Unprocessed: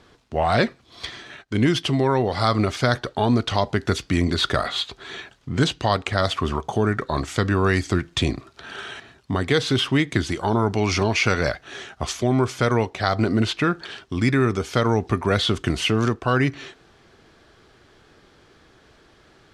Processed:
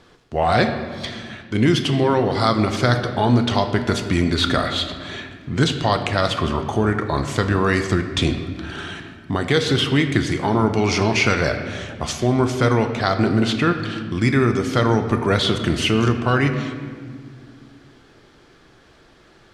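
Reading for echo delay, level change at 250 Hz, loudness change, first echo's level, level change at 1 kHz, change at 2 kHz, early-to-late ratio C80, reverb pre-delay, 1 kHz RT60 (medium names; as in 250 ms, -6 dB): no echo, +3.0 dB, +2.5 dB, no echo, +2.5 dB, +2.5 dB, 9.5 dB, 6 ms, 1.7 s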